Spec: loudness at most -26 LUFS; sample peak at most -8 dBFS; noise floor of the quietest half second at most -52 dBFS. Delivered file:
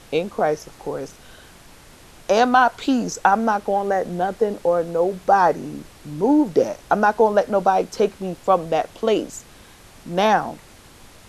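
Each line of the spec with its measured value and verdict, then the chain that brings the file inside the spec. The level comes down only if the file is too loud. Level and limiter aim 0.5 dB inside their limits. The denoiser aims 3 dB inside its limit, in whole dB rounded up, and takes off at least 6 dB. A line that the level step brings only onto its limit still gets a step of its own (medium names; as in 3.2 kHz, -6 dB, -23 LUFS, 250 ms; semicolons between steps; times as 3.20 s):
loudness -20.0 LUFS: fail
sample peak -3.5 dBFS: fail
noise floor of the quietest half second -46 dBFS: fail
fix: trim -6.5 dB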